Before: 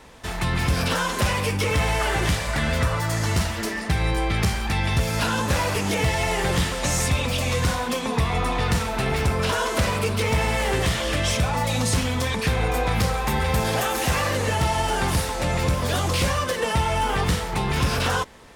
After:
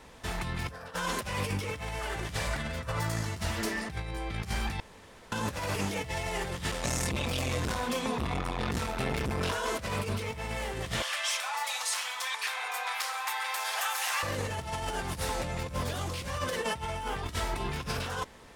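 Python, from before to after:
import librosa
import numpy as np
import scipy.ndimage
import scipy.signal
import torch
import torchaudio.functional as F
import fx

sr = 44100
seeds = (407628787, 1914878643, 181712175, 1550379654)

y = fx.spec_box(x, sr, start_s=0.71, length_s=0.23, low_hz=420.0, high_hz=2000.0, gain_db=11)
y = fx.transformer_sat(y, sr, knee_hz=320.0, at=(6.71, 9.54))
y = fx.highpass(y, sr, hz=860.0, slope=24, at=(11.02, 14.23))
y = fx.comb(y, sr, ms=3.1, depth=0.65, at=(17.22, 17.69))
y = fx.edit(y, sr, fx.room_tone_fill(start_s=4.8, length_s=0.52), tone=tone)
y = fx.over_compress(y, sr, threshold_db=-25.0, ratio=-0.5)
y = y * 10.0 ** (-7.0 / 20.0)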